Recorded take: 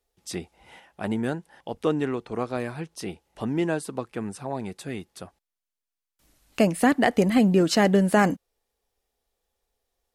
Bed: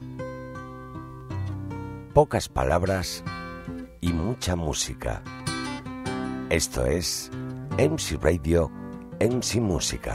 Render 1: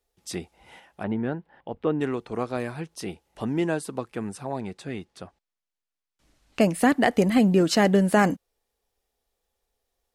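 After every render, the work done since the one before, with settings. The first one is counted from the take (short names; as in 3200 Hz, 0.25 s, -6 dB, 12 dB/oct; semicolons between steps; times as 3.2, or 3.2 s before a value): 1.03–2.01 air absorption 400 m; 4.6–6.61 air absorption 59 m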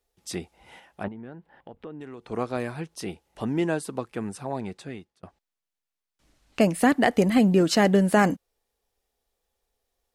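1.08–2.28 compressor 3:1, threshold -41 dBFS; 4.74–5.23 fade out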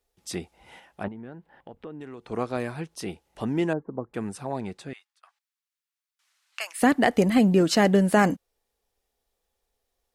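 3.73–4.14 Gaussian blur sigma 8 samples; 4.93–6.82 HPF 1100 Hz 24 dB/oct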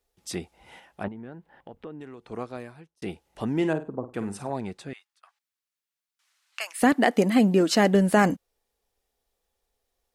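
1.86–3.02 fade out; 3.55–4.5 flutter echo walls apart 8.6 m, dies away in 0.28 s; 6.93–7.95 brick-wall FIR high-pass 170 Hz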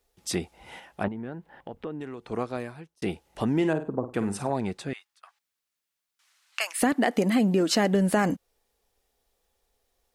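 in parallel at -3 dB: limiter -17.5 dBFS, peak gain reduction 10 dB; on the sum: compressor 2.5:1, threshold -22 dBFS, peak gain reduction 7 dB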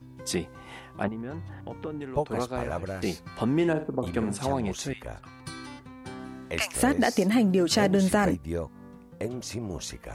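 add bed -10 dB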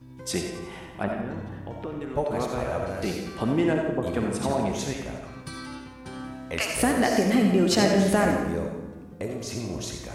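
on a send: split-band echo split 330 Hz, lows 0.235 s, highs 88 ms, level -10.5 dB; on the sum: digital reverb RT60 0.86 s, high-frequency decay 0.75×, pre-delay 25 ms, DRR 3 dB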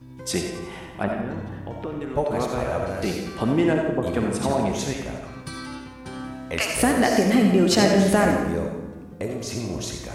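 gain +3 dB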